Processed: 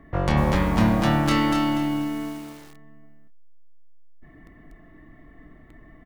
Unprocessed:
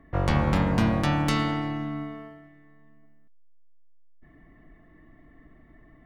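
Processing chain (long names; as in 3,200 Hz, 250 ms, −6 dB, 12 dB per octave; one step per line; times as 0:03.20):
double-tracking delay 27 ms −8 dB
in parallel at −3 dB: downward compressor 6 to 1, threshold −37 dBFS, peak gain reduction 19.5 dB
on the sum: feedback echo at a low word length 241 ms, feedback 35%, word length 7 bits, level −4 dB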